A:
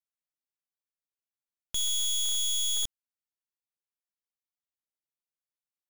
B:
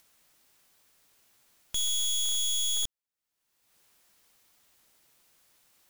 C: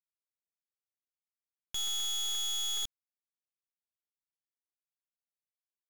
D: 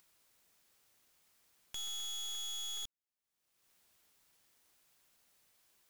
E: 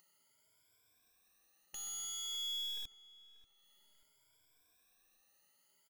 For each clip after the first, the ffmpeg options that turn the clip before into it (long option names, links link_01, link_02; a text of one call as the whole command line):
ffmpeg -i in.wav -af "acompressor=mode=upward:threshold=-42dB:ratio=2.5" out.wav
ffmpeg -i in.wav -af "equalizer=frequency=2000:width=0.5:gain=3,aresample=16000,acrusher=bits=4:mix=0:aa=0.5,aresample=44100,asoftclip=type=hard:threshold=-32.5dB" out.wav
ffmpeg -i in.wav -af "acompressor=mode=upward:threshold=-38dB:ratio=2.5,volume=-7.5dB" out.wav
ffmpeg -i in.wav -filter_complex "[0:a]afftfilt=real='re*pow(10,21/40*sin(2*PI*(1.7*log(max(b,1)*sr/1024/100)/log(2)-(0.54)*(pts-256)/sr)))':imag='im*pow(10,21/40*sin(2*PI*(1.7*log(max(b,1)*sr/1024/100)/log(2)-(0.54)*(pts-256)/sr)))':win_size=1024:overlap=0.75,asplit=2[link_01][link_02];[link_02]adelay=587,lowpass=frequency=2200:poles=1,volume=-16dB,asplit=2[link_03][link_04];[link_04]adelay=587,lowpass=frequency=2200:poles=1,volume=0.46,asplit=2[link_05][link_06];[link_06]adelay=587,lowpass=frequency=2200:poles=1,volume=0.46,asplit=2[link_07][link_08];[link_08]adelay=587,lowpass=frequency=2200:poles=1,volume=0.46[link_09];[link_01][link_03][link_05][link_07][link_09]amix=inputs=5:normalize=0,volume=-6.5dB" out.wav